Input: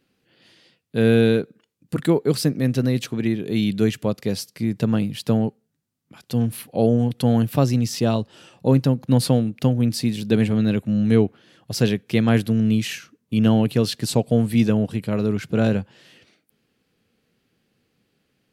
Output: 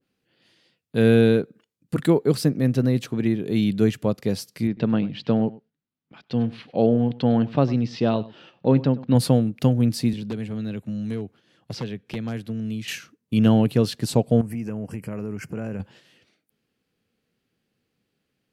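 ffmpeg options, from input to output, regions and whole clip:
ffmpeg -i in.wav -filter_complex "[0:a]asettb=1/sr,asplit=3[link_01][link_02][link_03];[link_01]atrim=end=4.674[link_04];[link_02]atrim=start=4.67:end=9.15,asetpts=PTS-STARTPTS,afade=type=in:duration=0.004:curve=qsin,afade=type=out:start_time=4.476:duration=0.004:curve=qsin,lowpass=frequency=4200:width=0.5412,lowpass=frequency=4200:width=1.3066,equalizer=frequency=88:width_type=o:width=0.99:gain=-8,aecho=1:1:100:0.112,atrim=end_sample=197568[link_05];[link_03]atrim=start=9.146[link_06];[link_04][link_05]acrossfade=duration=0.004:curve1=hsin:curve2=qsin[link_07];[link_07][link_06]acrossfade=duration=0.004:curve1=qsin:curve2=hsin,asettb=1/sr,asplit=3[link_08][link_09][link_10];[link_08]atrim=end=10.134[link_11];[link_09]atrim=start=10.13:end=12.88,asetpts=PTS-STARTPTS,afade=type=in:duration=0.004:curve=qsin,afade=type=out:start_time=2.746:duration=0.004:curve=qsin,highshelf=frequency=11000:gain=-6.5,acrossover=split=140|4500[link_12][link_13][link_14];[link_12]acompressor=threshold=-37dB:ratio=4[link_15];[link_13]acompressor=threshold=-31dB:ratio=4[link_16];[link_14]acompressor=threshold=-58dB:ratio=4[link_17];[link_15][link_16][link_17]amix=inputs=3:normalize=0,aeval=exprs='0.0794*(abs(mod(val(0)/0.0794+3,4)-2)-1)':channel_layout=same[link_18];[link_10]atrim=start=12.876[link_19];[link_11][link_18]acrossfade=duration=0.004:curve1=hsin:curve2=qsin[link_20];[link_20][link_19]acrossfade=duration=0.004:curve1=qsin:curve2=hsin,asettb=1/sr,asplit=3[link_21][link_22][link_23];[link_21]atrim=end=14.414[link_24];[link_22]atrim=start=14.41:end=15.8,asetpts=PTS-STARTPTS,afade=type=in:duration=0.004:curve=qsin,afade=type=out:start_time=1.386:duration=0.004:curve=qsin,asuperstop=centerf=3700:order=4:qfactor=1.6,acompressor=threshold=-28dB:ratio=4:attack=3.2:release=140:knee=1:detection=peak[link_25];[link_23]atrim=start=15.796[link_26];[link_24][link_25]acrossfade=duration=0.004:curve1=hsin:curve2=qsin[link_27];[link_27][link_26]acrossfade=duration=0.004:curve1=qsin:curve2=hsin,agate=range=-7dB:threshold=-48dB:ratio=16:detection=peak,adynamicequalizer=threshold=0.0112:dfrequency=1700:dqfactor=0.7:tfrequency=1700:tqfactor=0.7:attack=5:release=100:ratio=0.375:range=3.5:mode=cutabove:tftype=highshelf" out.wav

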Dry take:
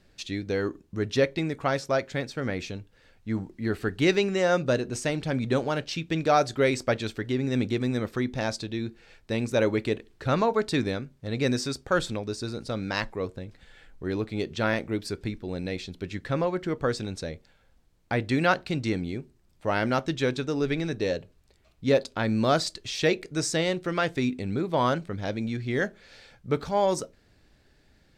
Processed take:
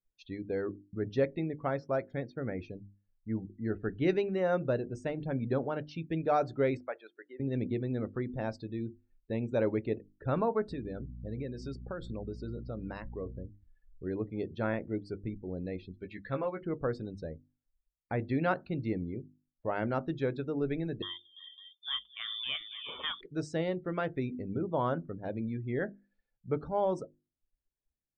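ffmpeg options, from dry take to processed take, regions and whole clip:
ffmpeg -i in.wav -filter_complex "[0:a]asettb=1/sr,asplit=3[link_01][link_02][link_03];[link_01]atrim=end=6.774[link_04];[link_02]atrim=start=6.77:end=7.4,asetpts=PTS-STARTPTS,afade=type=in:duration=0.004:curve=qsin,afade=type=out:start_time=0.626:duration=0.004:curve=qsin,highpass=790,lowpass=7800,highshelf=frequency=2200:gain=-7.5[link_05];[link_03]atrim=start=7.396[link_06];[link_04][link_05]acrossfade=duration=0.004:curve1=hsin:curve2=qsin[link_07];[link_07][link_06]acrossfade=duration=0.004:curve1=qsin:curve2=hsin,asettb=1/sr,asplit=3[link_08][link_09][link_10];[link_08]atrim=end=10.704[link_11];[link_09]atrim=start=10.7:end=13.46,asetpts=PTS-STARTPTS,afade=type=in:duration=0.004:curve=qsin,afade=type=out:start_time=2.756:duration=0.004:curve=qsin,aeval=exprs='val(0)+0.0126*(sin(2*PI*60*n/s)+sin(2*PI*2*60*n/s)/2+sin(2*PI*3*60*n/s)/3+sin(2*PI*4*60*n/s)/4+sin(2*PI*5*60*n/s)/5)':channel_layout=same,acompressor=threshold=-27dB:ratio=10:attack=3.2:release=140:knee=1:detection=peak[link_12];[link_10]atrim=start=13.456[link_13];[link_11][link_12]acrossfade=duration=0.004:curve1=hsin:curve2=qsin[link_14];[link_14][link_13]acrossfade=duration=0.004:curve1=qsin:curve2=hsin,asettb=1/sr,asplit=3[link_15][link_16][link_17];[link_15]atrim=end=15.924[link_18];[link_16]atrim=start=15.92:end=16.61,asetpts=PTS-STARTPTS,afade=type=in:duration=0.004:curve=qsin,afade=type=out:start_time=0.686:duration=0.004:curve=qsin,tiltshelf=frequency=910:gain=-5.5,asplit=2[link_19][link_20];[link_20]adelay=15,volume=-6dB[link_21];[link_19][link_21]amix=inputs=2:normalize=0,atrim=end_sample=30429[link_22];[link_17]atrim=start=16.606[link_23];[link_18][link_22]acrossfade=duration=0.004:curve1=hsin:curve2=qsin[link_24];[link_24][link_23]acrossfade=duration=0.004:curve1=qsin:curve2=hsin,asettb=1/sr,asplit=3[link_25][link_26][link_27];[link_25]atrim=end=21.024[link_28];[link_26]atrim=start=21.02:end=23.21,asetpts=PTS-STARTPTS,afade=type=in:duration=0.004:curve=qsin,afade=type=out:start_time=2.186:duration=0.004:curve=qsin,aecho=1:1:226|339|358|410|552|832:0.1|0.251|0.237|0.188|0.282|0.251,atrim=end_sample=96579,lowpass=frequency=3100:width_type=q:width=0.5098,lowpass=frequency=3100:width_type=q:width=0.6013,lowpass=frequency=3100:width_type=q:width=0.9,lowpass=frequency=3100:width_type=q:width=2.563,afreqshift=-3700[link_29];[link_27]atrim=start=23.206[link_30];[link_28][link_29]acrossfade=duration=0.004:curve1=hsin:curve2=qsin[link_31];[link_31][link_30]acrossfade=duration=0.004:curve1=qsin:curve2=hsin,afftdn=noise_reduction=31:noise_floor=-38,lowpass=frequency=1000:poles=1,bandreject=frequency=50:width_type=h:width=6,bandreject=frequency=100:width_type=h:width=6,bandreject=frequency=150:width_type=h:width=6,bandreject=frequency=200:width_type=h:width=6,bandreject=frequency=250:width_type=h:width=6,bandreject=frequency=300:width_type=h:width=6,bandreject=frequency=350:width_type=h:width=6,volume=-4.5dB" out.wav

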